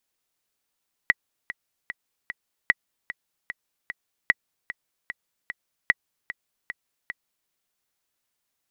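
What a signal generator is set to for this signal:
click track 150 BPM, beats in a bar 4, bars 4, 1,940 Hz, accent 14.5 dB −4 dBFS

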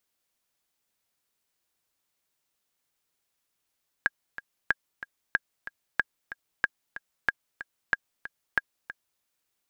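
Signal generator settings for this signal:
click track 186 BPM, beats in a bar 2, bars 8, 1,630 Hz, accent 14.5 dB −9 dBFS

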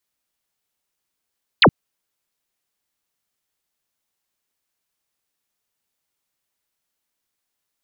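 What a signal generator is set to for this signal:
single falling chirp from 4,800 Hz, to 99 Hz, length 0.07 s sine, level −7.5 dB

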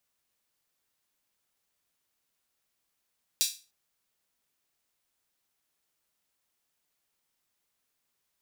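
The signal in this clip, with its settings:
open synth hi-hat length 0.30 s, high-pass 4,100 Hz, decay 0.32 s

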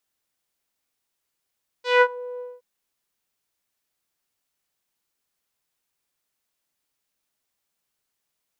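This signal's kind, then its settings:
subtractive voice saw B4 12 dB per octave, low-pass 610 Hz, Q 1.9, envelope 3 octaves, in 0.34 s, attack 174 ms, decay 0.06 s, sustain −22 dB, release 0.21 s, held 0.56 s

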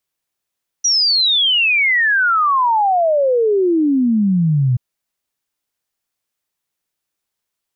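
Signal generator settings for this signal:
exponential sine sweep 5,900 Hz → 120 Hz 3.93 s −11.5 dBFS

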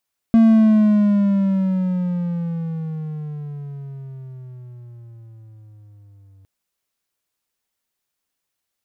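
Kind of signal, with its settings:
pitch glide with a swell triangle, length 6.11 s, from 228 Hz, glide −15 semitones, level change −38 dB, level −6 dB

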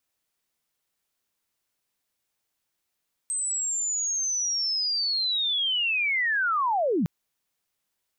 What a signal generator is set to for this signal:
glide linear 8,300 Hz → 140 Hz −25.5 dBFS → −21 dBFS 3.76 s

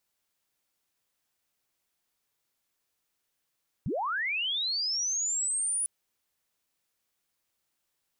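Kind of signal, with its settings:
glide linear 96 Hz → 9,900 Hz −28 dBFS → −26.5 dBFS 2.00 s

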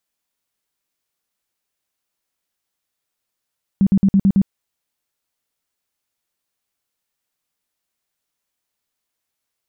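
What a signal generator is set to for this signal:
tone bursts 195 Hz, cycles 11, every 0.11 s, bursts 6, −9.5 dBFS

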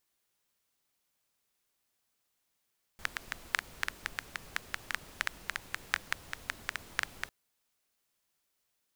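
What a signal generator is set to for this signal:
rain-like ticks over hiss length 4.30 s, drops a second 6.7, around 1,700 Hz, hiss −11.5 dB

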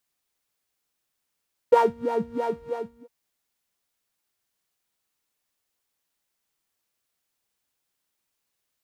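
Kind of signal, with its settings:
subtractive patch with filter wobble A#4, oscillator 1 saw, interval −12 semitones, noise −4.5 dB, filter bandpass, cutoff 170 Hz, Q 4.3, filter envelope 1 octave, filter decay 0.12 s, attack 7.3 ms, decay 0.21 s, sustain −9.5 dB, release 0.51 s, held 0.85 s, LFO 3.1 Hz, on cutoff 1.9 octaves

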